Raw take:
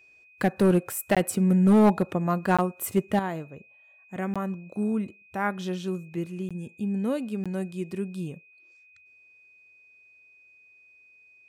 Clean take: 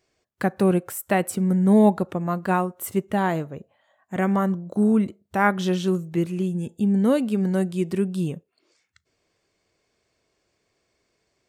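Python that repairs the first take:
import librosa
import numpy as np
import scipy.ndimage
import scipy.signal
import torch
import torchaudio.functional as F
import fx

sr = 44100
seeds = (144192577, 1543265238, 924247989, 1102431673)

y = fx.fix_declip(x, sr, threshold_db=-13.5)
y = fx.notch(y, sr, hz=2500.0, q=30.0)
y = fx.fix_interpolate(y, sr, at_s=(1.15, 2.57, 4.34, 6.49, 7.44), length_ms=16.0)
y = fx.fix_level(y, sr, at_s=3.19, step_db=8.0)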